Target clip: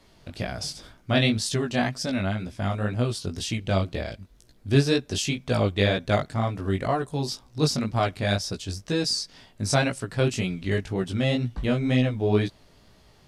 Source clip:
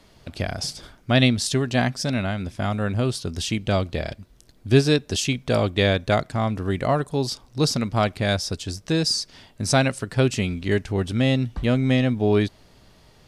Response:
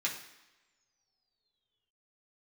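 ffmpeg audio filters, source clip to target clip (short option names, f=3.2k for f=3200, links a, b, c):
-af "flanger=delay=16:depth=5.2:speed=2"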